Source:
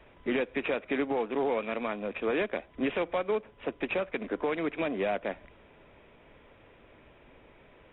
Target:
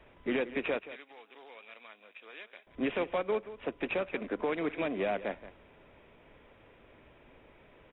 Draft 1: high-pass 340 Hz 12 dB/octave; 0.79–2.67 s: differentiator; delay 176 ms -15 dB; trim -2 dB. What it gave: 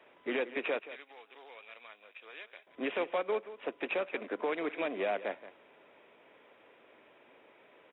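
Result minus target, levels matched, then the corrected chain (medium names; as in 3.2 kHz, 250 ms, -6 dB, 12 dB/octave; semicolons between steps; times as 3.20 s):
250 Hz band -3.0 dB
0.79–2.67 s: differentiator; delay 176 ms -15 dB; trim -2 dB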